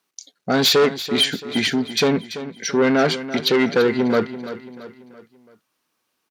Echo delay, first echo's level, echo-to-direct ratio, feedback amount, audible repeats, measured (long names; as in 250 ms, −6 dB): 336 ms, −13.0 dB, −12.0 dB, 45%, 4